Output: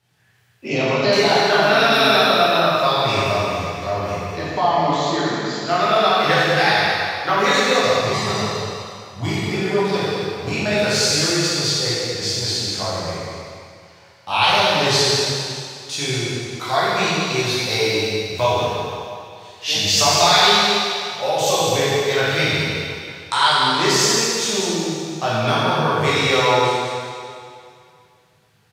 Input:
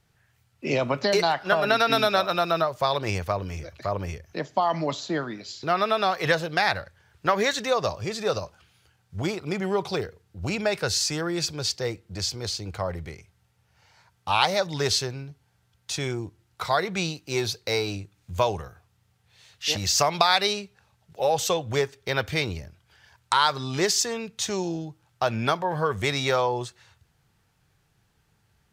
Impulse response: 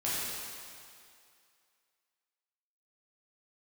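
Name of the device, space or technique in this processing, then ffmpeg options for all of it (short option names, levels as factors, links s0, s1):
PA in a hall: -filter_complex "[0:a]highpass=100,equalizer=f=3200:t=o:w=1.4:g=4,aecho=1:1:198:0.376[s0];[1:a]atrim=start_sample=2205[s1];[s0][s1]afir=irnorm=-1:irlink=0,asettb=1/sr,asplit=3[s2][s3][s4];[s2]atrim=end=8.134[s5];[s3]atrim=start=8.13:end=9.54,asetpts=PTS-STARTPTS,afade=t=in:d=0.004:c=qsin,afade=t=out:st=1.406:d=0.004:c=qsin,aecho=1:1:1:0.55,atrim=end_sample=62181[s6];[s4]atrim=start=9.536[s7];[s5][s6]acrossfade=d=0.004:c1=hsin:c2=qsin[s8];[s8][s7]acrossfade=d=0.004:c1=qsin:c2=hsin,volume=0.891"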